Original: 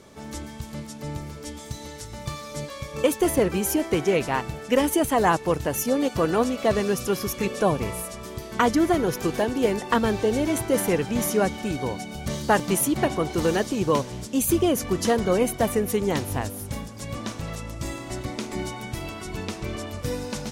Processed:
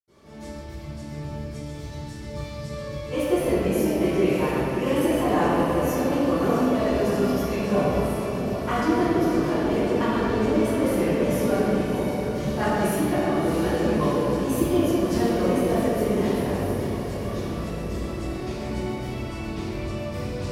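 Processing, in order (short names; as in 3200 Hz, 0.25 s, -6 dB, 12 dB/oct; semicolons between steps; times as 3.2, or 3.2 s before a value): diffused feedback echo 0.651 s, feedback 65%, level -9 dB; reverb RT60 2.6 s, pre-delay 76 ms; gain +1.5 dB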